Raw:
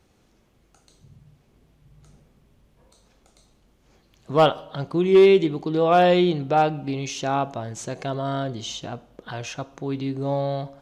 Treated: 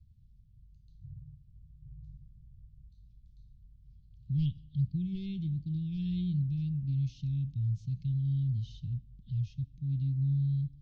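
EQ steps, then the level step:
inverse Chebyshev band-stop filter 500–1,400 Hz, stop band 80 dB
low-pass filter 2,900 Hz 12 dB per octave
high-frequency loss of the air 350 metres
+7.5 dB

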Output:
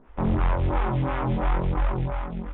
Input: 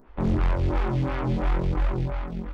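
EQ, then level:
Butterworth low-pass 3,700 Hz 96 dB per octave
dynamic equaliser 920 Hz, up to +5 dB, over −45 dBFS, Q 1.2
parametric band 350 Hz −3 dB 0.34 octaves
0.0 dB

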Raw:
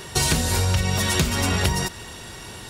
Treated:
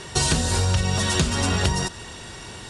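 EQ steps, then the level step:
Butterworth low-pass 10,000 Hz 48 dB per octave
dynamic equaliser 2,200 Hz, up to −6 dB, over −45 dBFS, Q 5.3
0.0 dB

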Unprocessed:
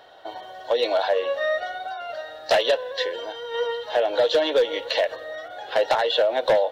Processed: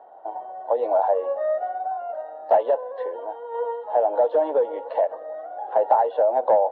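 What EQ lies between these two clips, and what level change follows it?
high-pass filter 180 Hz 24 dB per octave
low-pass with resonance 840 Hz, resonance Q 3.7
high-frequency loss of the air 63 metres
−4.5 dB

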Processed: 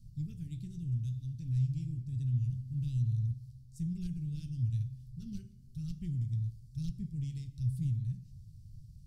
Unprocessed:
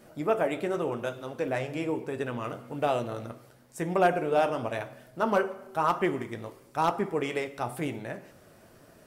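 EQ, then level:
Chebyshev band-stop filter 130–4,600 Hz, order 3
RIAA equalisation playback
parametric band 2,100 Hz −3.5 dB 1.6 octaves
0.0 dB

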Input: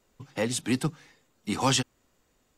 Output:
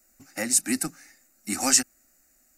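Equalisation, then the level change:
high-shelf EQ 2,600 Hz +11.5 dB
high-shelf EQ 6,600 Hz +6.5 dB
phaser with its sweep stopped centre 670 Hz, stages 8
0.0 dB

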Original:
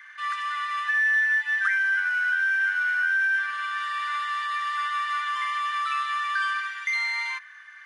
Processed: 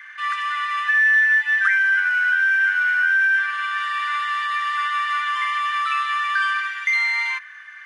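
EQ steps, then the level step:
drawn EQ curve 530 Hz 0 dB, 2,600 Hz +6 dB, 4,000 Hz +1 dB
+1.5 dB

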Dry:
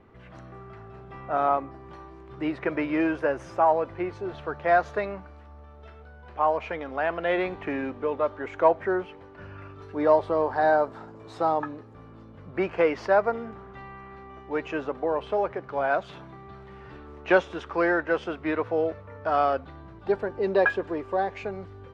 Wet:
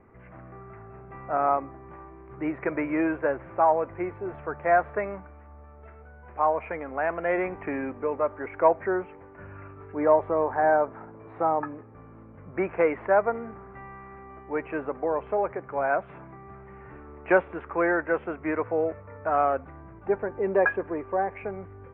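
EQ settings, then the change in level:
elliptic low-pass filter 2,300 Hz, stop band 60 dB
0.0 dB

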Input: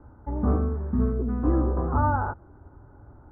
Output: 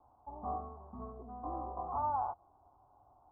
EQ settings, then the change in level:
formant resonators in series a
+3.0 dB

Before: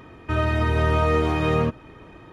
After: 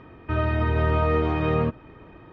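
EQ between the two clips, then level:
high-frequency loss of the air 240 metres
−1.0 dB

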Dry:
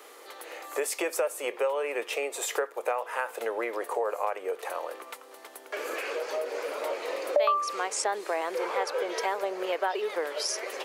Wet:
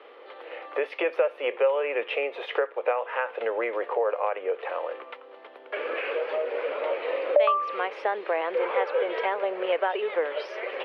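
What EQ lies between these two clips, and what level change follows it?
elliptic band-pass filter 140–3,100 Hz, stop band 40 dB
parametric band 520 Hz +6 dB 0.46 octaves
dynamic equaliser 2,100 Hz, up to +4 dB, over −44 dBFS, Q 0.82
0.0 dB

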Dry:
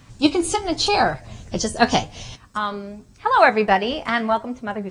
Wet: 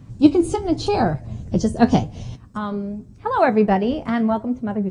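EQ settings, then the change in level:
tilt shelving filter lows +6 dB, about 930 Hz
parametric band 150 Hz +9 dB 3 octaves
high-shelf EQ 6,800 Hz +4 dB
−6.0 dB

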